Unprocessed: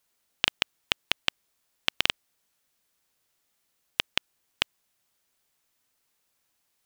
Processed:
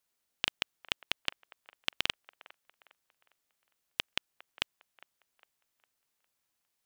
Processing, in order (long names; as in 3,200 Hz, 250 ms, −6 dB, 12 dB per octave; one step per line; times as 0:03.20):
delay with a band-pass on its return 406 ms, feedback 38%, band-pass 970 Hz, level −16 dB
level −7 dB